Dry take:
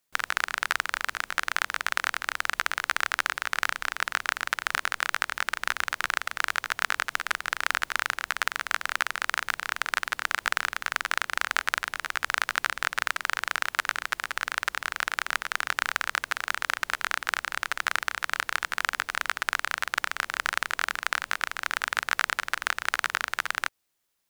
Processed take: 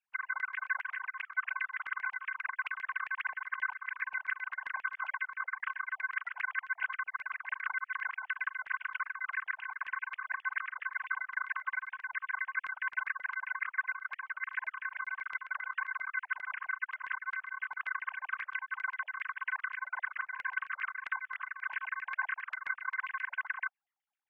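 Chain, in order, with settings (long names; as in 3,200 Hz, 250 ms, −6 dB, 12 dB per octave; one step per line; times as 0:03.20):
three sine waves on the formant tracks
auto-filter band-pass saw down 7.5 Hz 680–2,600 Hz
level −3.5 dB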